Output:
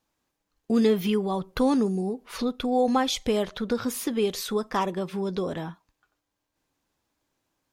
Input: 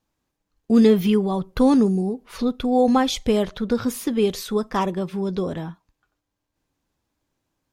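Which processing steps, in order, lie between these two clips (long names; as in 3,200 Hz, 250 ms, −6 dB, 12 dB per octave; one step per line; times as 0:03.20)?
low-shelf EQ 250 Hz −8 dB
in parallel at +1 dB: downward compressor, threshold −29 dBFS, peak gain reduction 14.5 dB
on the sum: level −5 dB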